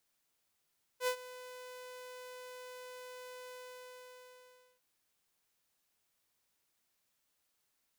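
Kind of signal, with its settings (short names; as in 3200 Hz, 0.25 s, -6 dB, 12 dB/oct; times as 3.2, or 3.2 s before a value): ADSR saw 502 Hz, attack 74 ms, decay 83 ms, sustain -18 dB, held 2.51 s, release 1.3 s -26.5 dBFS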